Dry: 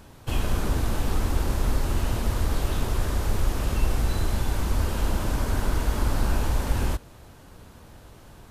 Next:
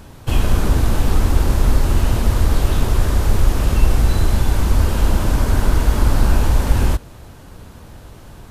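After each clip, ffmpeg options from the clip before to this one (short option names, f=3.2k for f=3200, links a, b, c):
-af "lowshelf=f=220:g=3.5,volume=6.5dB"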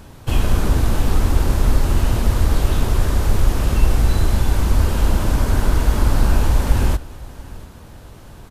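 -af "aecho=1:1:686:0.0944,volume=-1dB"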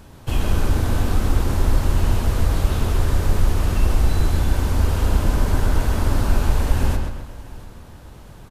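-filter_complex "[0:a]asplit=2[a][b];[b]adelay=131,lowpass=f=4.6k:p=1,volume=-4.5dB,asplit=2[c][d];[d]adelay=131,lowpass=f=4.6k:p=1,volume=0.46,asplit=2[e][f];[f]adelay=131,lowpass=f=4.6k:p=1,volume=0.46,asplit=2[g][h];[h]adelay=131,lowpass=f=4.6k:p=1,volume=0.46,asplit=2[i][j];[j]adelay=131,lowpass=f=4.6k:p=1,volume=0.46,asplit=2[k][l];[l]adelay=131,lowpass=f=4.6k:p=1,volume=0.46[m];[a][c][e][g][i][k][m]amix=inputs=7:normalize=0,volume=-3.5dB"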